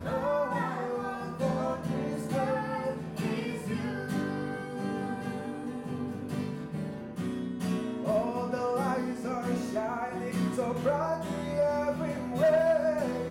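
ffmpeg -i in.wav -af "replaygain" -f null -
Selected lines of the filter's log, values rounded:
track_gain = +11.8 dB
track_peak = 0.084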